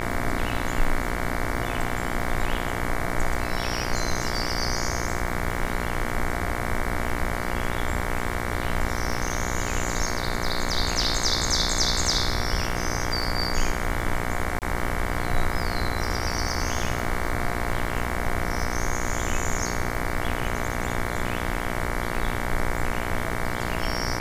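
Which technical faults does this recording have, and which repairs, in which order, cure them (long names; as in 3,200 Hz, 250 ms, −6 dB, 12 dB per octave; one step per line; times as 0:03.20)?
mains buzz 60 Hz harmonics 38 −30 dBFS
surface crackle 33 per second −32 dBFS
0:14.59–0:14.62: drop-out 28 ms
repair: click removal
hum removal 60 Hz, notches 38
repair the gap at 0:14.59, 28 ms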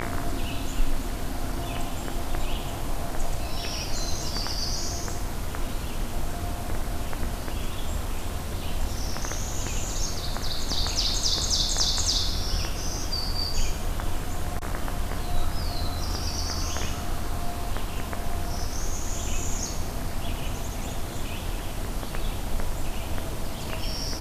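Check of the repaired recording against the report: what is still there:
none of them is left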